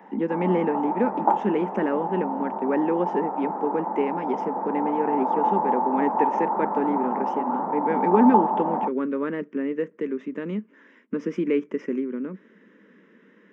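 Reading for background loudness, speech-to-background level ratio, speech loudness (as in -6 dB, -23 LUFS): -26.5 LUFS, 0.0 dB, -26.5 LUFS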